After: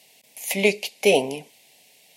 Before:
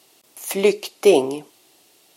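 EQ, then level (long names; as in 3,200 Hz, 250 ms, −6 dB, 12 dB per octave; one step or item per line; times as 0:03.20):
parametric band 100 Hz +10.5 dB 0.62 octaves
parametric band 2,200 Hz +11 dB 0.76 octaves
phaser with its sweep stopped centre 340 Hz, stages 6
0.0 dB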